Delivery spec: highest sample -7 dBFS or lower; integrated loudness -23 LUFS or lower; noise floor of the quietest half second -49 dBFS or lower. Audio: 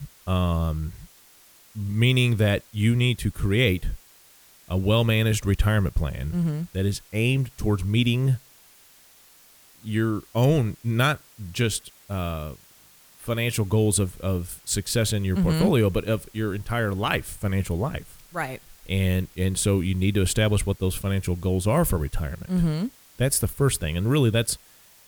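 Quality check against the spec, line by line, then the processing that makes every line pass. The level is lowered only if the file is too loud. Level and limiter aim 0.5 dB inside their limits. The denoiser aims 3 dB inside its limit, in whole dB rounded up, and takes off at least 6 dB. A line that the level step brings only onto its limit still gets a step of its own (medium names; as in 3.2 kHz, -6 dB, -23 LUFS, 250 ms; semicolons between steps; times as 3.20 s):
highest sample -6.0 dBFS: fail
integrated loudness -24.5 LUFS: pass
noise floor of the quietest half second -54 dBFS: pass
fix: peak limiter -7.5 dBFS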